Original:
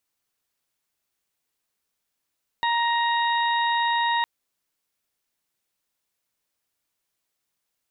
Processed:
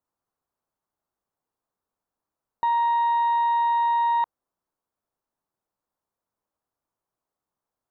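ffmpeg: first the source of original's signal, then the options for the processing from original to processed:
-f lavfi -i "aevalsrc='0.0841*sin(2*PI*938*t)+0.0473*sin(2*PI*1876*t)+0.0158*sin(2*PI*2814*t)+0.0316*sin(2*PI*3752*t)':d=1.61:s=44100"
-af "highshelf=f=1600:t=q:w=1.5:g=-14"

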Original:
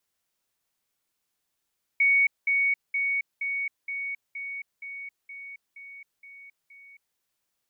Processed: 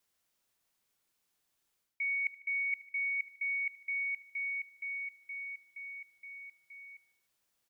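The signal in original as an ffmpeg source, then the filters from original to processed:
-f lavfi -i "aevalsrc='pow(10,(-17.5-3*floor(t/0.47))/20)*sin(2*PI*2230*t)*clip(min(mod(t,0.47),0.27-mod(t,0.47))/0.005,0,1)':d=5.17:s=44100"
-af "areverse,acompressor=threshold=0.0251:ratio=10,areverse,aecho=1:1:75|150|225|300:0.141|0.072|0.0367|0.0187"

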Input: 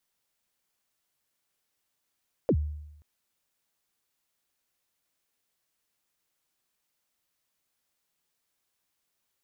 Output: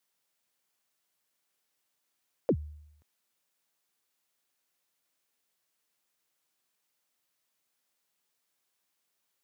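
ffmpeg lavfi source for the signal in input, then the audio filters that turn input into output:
-f lavfi -i "aevalsrc='0.126*pow(10,-3*t/0.88)*sin(2*PI*(590*0.066/log(75/590)*(exp(log(75/590)*min(t,0.066)/0.066)-1)+75*max(t-0.066,0)))':d=0.53:s=44100"
-af "highpass=91,lowshelf=f=160:g=-6"

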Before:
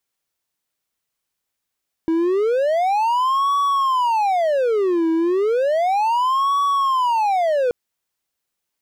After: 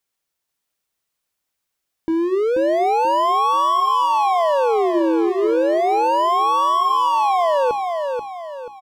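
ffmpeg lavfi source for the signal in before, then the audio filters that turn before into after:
-f lavfi -i "aevalsrc='0.211*(1-4*abs(mod((727.5*t-402.5/(2*PI*0.33)*sin(2*PI*0.33*t))+0.25,1)-0.5))':d=5.63:s=44100"
-af "bandreject=f=60:t=h:w=6,bandreject=f=120:t=h:w=6,bandreject=f=180:t=h:w=6,bandreject=f=240:t=h:w=6,bandreject=f=300:t=h:w=6,bandreject=f=360:t=h:w=6,aecho=1:1:484|968|1452|1936|2420:0.562|0.219|0.0855|0.0334|0.013"

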